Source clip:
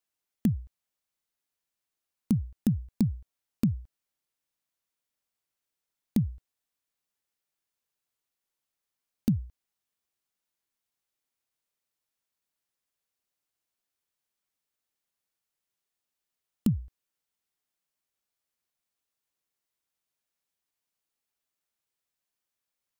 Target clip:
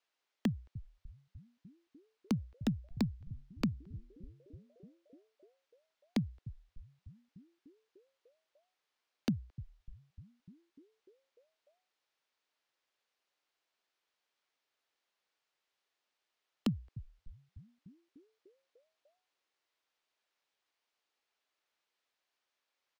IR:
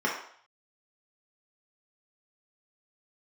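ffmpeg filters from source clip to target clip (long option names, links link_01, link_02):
-filter_complex "[0:a]acrossover=split=310 5400:gain=0.126 1 0.0891[link_01][link_02][link_03];[link_01][link_02][link_03]amix=inputs=3:normalize=0,acrossover=split=250|1200|1900[link_04][link_05][link_06][link_07];[link_04]asplit=9[link_08][link_09][link_10][link_11][link_12][link_13][link_14][link_15][link_16];[link_09]adelay=298,afreqshift=-100,volume=-11.5dB[link_17];[link_10]adelay=596,afreqshift=-200,volume=-15.5dB[link_18];[link_11]adelay=894,afreqshift=-300,volume=-19.5dB[link_19];[link_12]adelay=1192,afreqshift=-400,volume=-23.5dB[link_20];[link_13]adelay=1490,afreqshift=-500,volume=-27.6dB[link_21];[link_14]adelay=1788,afreqshift=-600,volume=-31.6dB[link_22];[link_15]adelay=2086,afreqshift=-700,volume=-35.6dB[link_23];[link_16]adelay=2384,afreqshift=-800,volume=-39.6dB[link_24];[link_08][link_17][link_18][link_19][link_20][link_21][link_22][link_23][link_24]amix=inputs=9:normalize=0[link_25];[link_05]acompressor=threshold=-49dB:ratio=6[link_26];[link_25][link_26][link_06][link_07]amix=inputs=4:normalize=0,volume=6.5dB"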